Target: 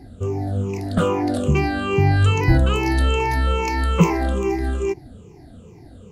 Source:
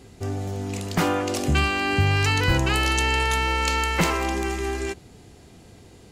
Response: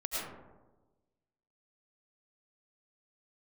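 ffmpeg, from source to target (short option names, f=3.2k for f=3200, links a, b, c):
-af "afftfilt=real='re*pow(10,18/40*sin(2*PI*(0.76*log(max(b,1)*sr/1024/100)/log(2)-(-2.4)*(pts-256)/sr)))':imag='im*pow(10,18/40*sin(2*PI*(0.76*log(max(b,1)*sr/1024/100)/log(2)-(-2.4)*(pts-256)/sr)))':win_size=1024:overlap=0.75,tiltshelf=f=1.1k:g=7,volume=-3.5dB"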